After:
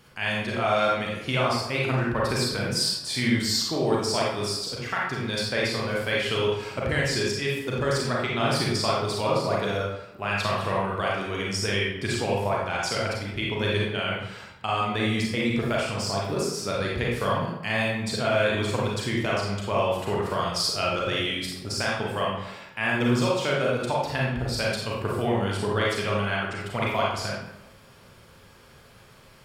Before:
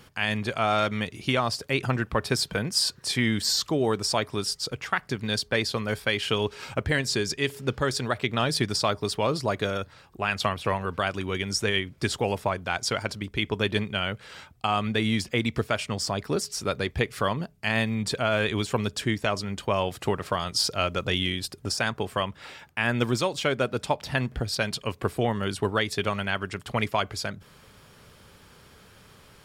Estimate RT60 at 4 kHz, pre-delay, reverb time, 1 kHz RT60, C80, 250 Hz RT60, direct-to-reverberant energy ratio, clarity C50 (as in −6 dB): 0.60 s, 32 ms, 0.90 s, 0.90 s, 4.0 dB, 0.90 s, −4.5 dB, −0.5 dB